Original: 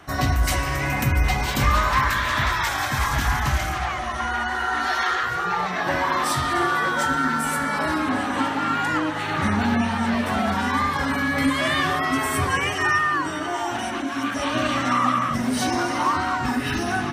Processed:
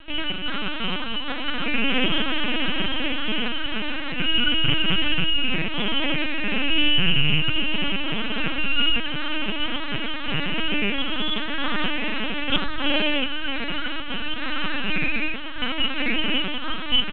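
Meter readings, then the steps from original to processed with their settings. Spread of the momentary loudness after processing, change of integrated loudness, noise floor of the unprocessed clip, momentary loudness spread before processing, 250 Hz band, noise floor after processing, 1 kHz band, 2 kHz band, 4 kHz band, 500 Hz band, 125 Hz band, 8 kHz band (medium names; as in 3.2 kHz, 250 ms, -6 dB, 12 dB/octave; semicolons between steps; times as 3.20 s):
7 LU, -1.5 dB, -28 dBFS, 4 LU, -3.0 dB, -27 dBFS, -11.5 dB, -2.0 dB, +9.0 dB, -3.5 dB, -7.0 dB, under -35 dB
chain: in parallel at -1.5 dB: peak limiter -19 dBFS, peak gain reduction 10 dB; on the sum: two resonant band-passes 2.1 kHz, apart 0.94 oct; full-wave rectifier; on a send: feedback delay 913 ms, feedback 21%, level -21.5 dB; on the sum: LPC vocoder at 8 kHz pitch kept; loudspeaker Doppler distortion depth 0.13 ms; trim +8 dB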